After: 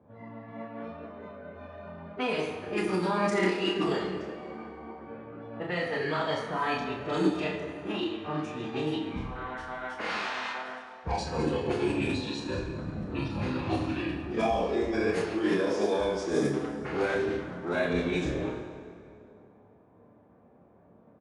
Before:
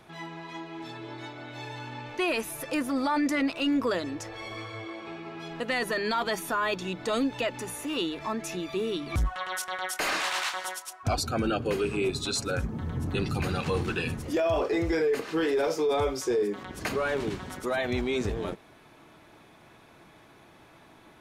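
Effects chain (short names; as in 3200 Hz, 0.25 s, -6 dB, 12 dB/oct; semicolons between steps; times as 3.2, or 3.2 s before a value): HPF 140 Hz 12 dB/oct; low shelf 460 Hz +5 dB; reverse bouncing-ball echo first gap 40 ms, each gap 1.15×, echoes 5; formant-preserving pitch shift -6.5 st; low-pass opened by the level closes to 660 Hz, open at -18.5 dBFS; doubler 28 ms -5 dB; plate-style reverb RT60 2.6 s, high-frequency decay 0.7×, DRR 7 dB; gain -6 dB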